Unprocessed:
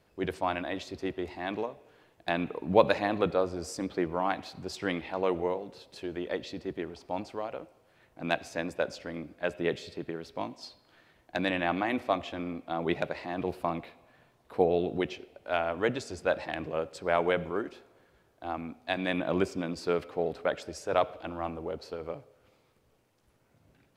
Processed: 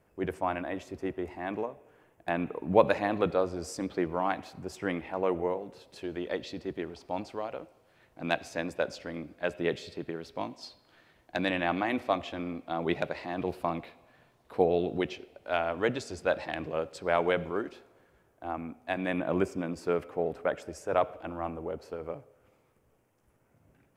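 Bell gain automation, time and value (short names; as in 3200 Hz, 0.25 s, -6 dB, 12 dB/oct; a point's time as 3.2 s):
bell 4100 Hz 0.86 oct
2.3 s -14 dB
3.37 s -2 dB
4.23 s -2 dB
4.67 s -12 dB
5.42 s -12 dB
6.14 s 0 dB
17.71 s 0 dB
18.45 s -11.5 dB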